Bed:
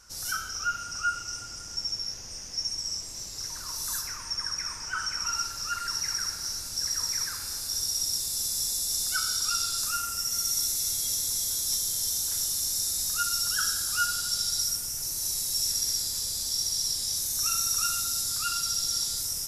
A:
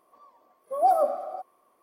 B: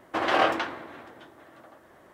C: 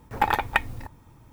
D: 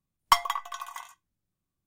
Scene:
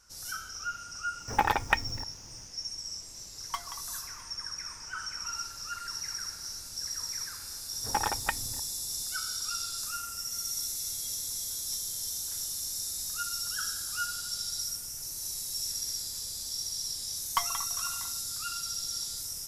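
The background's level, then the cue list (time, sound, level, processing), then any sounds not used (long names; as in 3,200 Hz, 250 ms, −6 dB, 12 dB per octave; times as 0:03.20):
bed −6.5 dB
0:01.17: mix in C −3 dB, fades 0.05 s
0:03.22: mix in D −15.5 dB
0:07.73: mix in C −7.5 dB + parametric band 2,300 Hz −4.5 dB 0.39 octaves
0:17.05: mix in D −9 dB
not used: A, B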